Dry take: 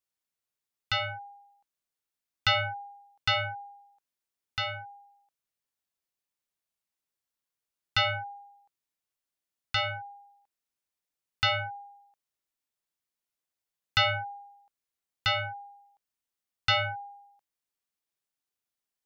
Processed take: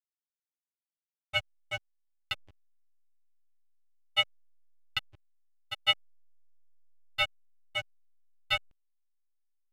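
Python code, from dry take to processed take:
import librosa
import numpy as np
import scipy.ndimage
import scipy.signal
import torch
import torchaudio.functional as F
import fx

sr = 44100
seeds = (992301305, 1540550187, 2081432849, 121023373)

y = fx.stretch_grains(x, sr, factor=0.51, grain_ms=126.0)
y = fx.room_shoebox(y, sr, seeds[0], volume_m3=640.0, walls='furnished', distance_m=1.6)
y = fx.granulator(y, sr, seeds[1], grain_ms=100.0, per_s=5.3, spray_ms=100.0, spread_st=0)
y = fx.backlash(y, sr, play_db=-30.0)
y = fx.peak_eq(y, sr, hz=2800.0, db=9.5, octaves=0.67)
y = y * 10.0 ** (-3.0 / 20.0)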